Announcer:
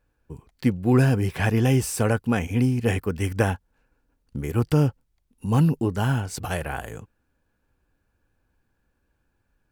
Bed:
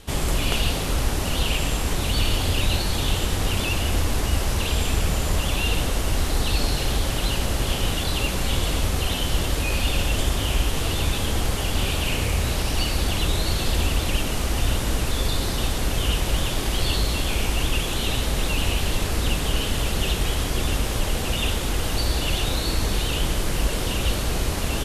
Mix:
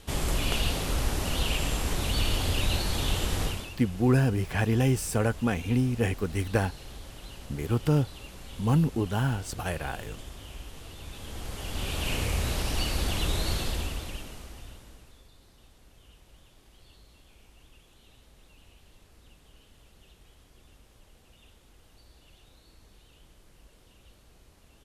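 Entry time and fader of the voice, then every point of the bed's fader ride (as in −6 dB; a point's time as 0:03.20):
3.15 s, −4.0 dB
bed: 0:03.43 −5 dB
0:03.76 −20.5 dB
0:10.99 −20.5 dB
0:12.11 −5.5 dB
0:13.54 −5.5 dB
0:15.30 −33.5 dB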